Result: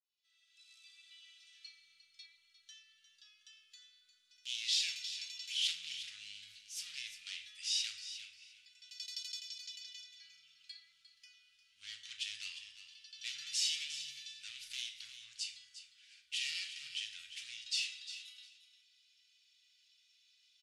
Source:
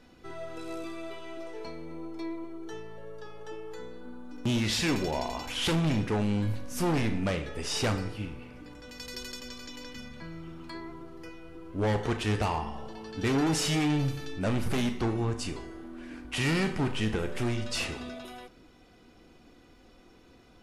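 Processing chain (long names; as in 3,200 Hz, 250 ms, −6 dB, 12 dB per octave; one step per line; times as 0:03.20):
fade in at the beginning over 1.63 s
inverse Chebyshev high-pass filter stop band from 920 Hz, stop band 60 dB
high-frequency loss of the air 71 metres
repeating echo 353 ms, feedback 17%, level −12 dB
on a send at −6 dB: convolution reverb RT60 0.30 s, pre-delay 3 ms
on the sum: level +2 dB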